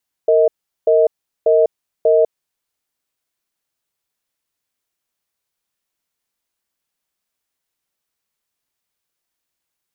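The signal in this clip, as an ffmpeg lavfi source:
ffmpeg -f lavfi -i "aevalsrc='0.251*(sin(2*PI*460*t)+sin(2*PI*633*t))*clip(min(mod(t,0.59),0.2-mod(t,0.59))/0.005,0,1)':duration=2.36:sample_rate=44100" out.wav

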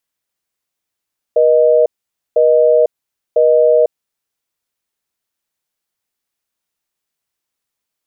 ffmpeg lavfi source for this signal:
ffmpeg -f lavfi -i "aevalsrc='0.316*(sin(2*PI*480*t)+sin(2*PI*620*t))*clip(min(mod(t,1),0.5-mod(t,1))/0.005,0,1)':duration=2.7:sample_rate=44100" out.wav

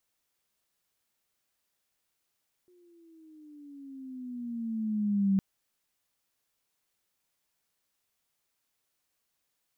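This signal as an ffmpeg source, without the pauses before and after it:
ffmpeg -f lavfi -i "aevalsrc='pow(10,(-21+38*(t/2.71-1))/20)*sin(2*PI*362*2.71/(-11*log(2)/12)*(exp(-11*log(2)/12*t/2.71)-1))':duration=2.71:sample_rate=44100" out.wav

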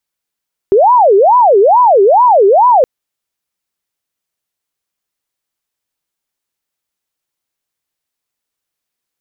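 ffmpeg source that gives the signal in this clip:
ffmpeg -f lavfi -i "aevalsrc='0.631*sin(2*PI*(693*t-307/(2*PI*2.3)*sin(2*PI*2.3*t)))':duration=2.12:sample_rate=44100" out.wav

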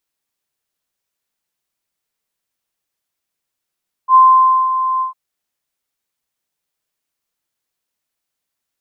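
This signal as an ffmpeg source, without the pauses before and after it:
ffmpeg -f lavfi -i "aevalsrc='0.668*sin(2*PI*1040*t)':duration=1.053:sample_rate=44100,afade=type=in:duration=0.068,afade=type=out:start_time=0.068:duration=0.539:silence=0.299,afade=type=out:start_time=0.93:duration=0.123" out.wav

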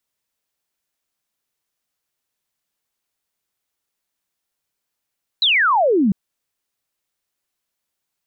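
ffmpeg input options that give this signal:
ffmpeg -f lavfi -i "aevalsrc='0.237*clip(t/0.002,0,1)*clip((0.7-t)/0.002,0,1)*sin(2*PI*4100*0.7/log(180/4100)*(exp(log(180/4100)*t/0.7)-1))':duration=0.7:sample_rate=44100" out.wav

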